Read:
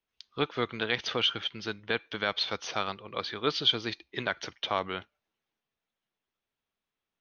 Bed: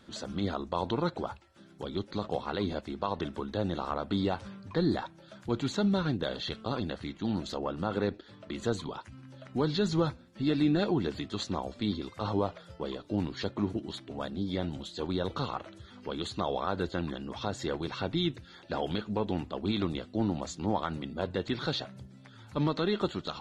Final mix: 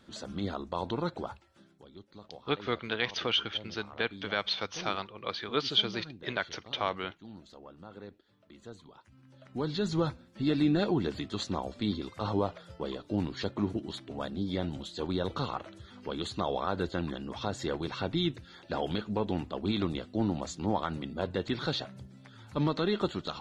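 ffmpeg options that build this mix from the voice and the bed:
ffmpeg -i stem1.wav -i stem2.wav -filter_complex "[0:a]adelay=2100,volume=-1.5dB[link_01];[1:a]volume=14dB,afade=type=out:start_time=1.56:duration=0.27:silence=0.199526,afade=type=in:start_time=8.92:duration=1.3:silence=0.149624[link_02];[link_01][link_02]amix=inputs=2:normalize=0" out.wav

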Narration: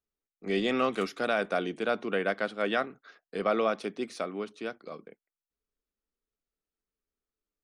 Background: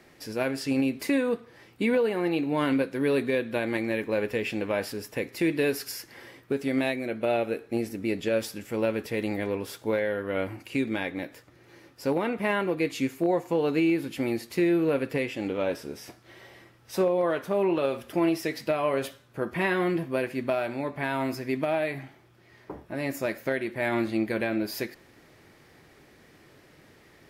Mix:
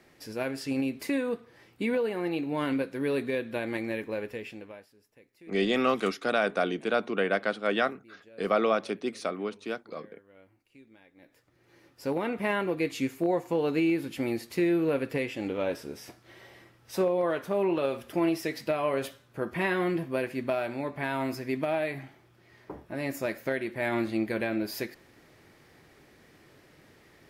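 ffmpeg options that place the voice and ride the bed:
ffmpeg -i stem1.wav -i stem2.wav -filter_complex "[0:a]adelay=5050,volume=2dB[link_01];[1:a]volume=21.5dB,afade=type=out:start_time=3.91:duration=0.96:silence=0.0668344,afade=type=in:start_time=11.15:duration=1.19:silence=0.0530884[link_02];[link_01][link_02]amix=inputs=2:normalize=0" out.wav

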